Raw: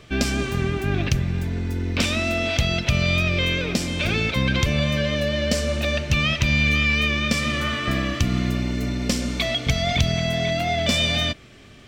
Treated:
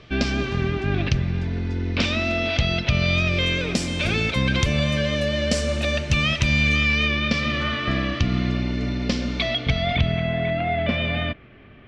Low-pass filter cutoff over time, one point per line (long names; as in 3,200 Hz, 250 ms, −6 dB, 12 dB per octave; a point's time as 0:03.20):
low-pass filter 24 dB per octave
0:02.98 5,200 Hz
0:03.63 10,000 Hz
0:06.56 10,000 Hz
0:07.20 4,900 Hz
0:09.47 4,900 Hz
0:10.35 2,600 Hz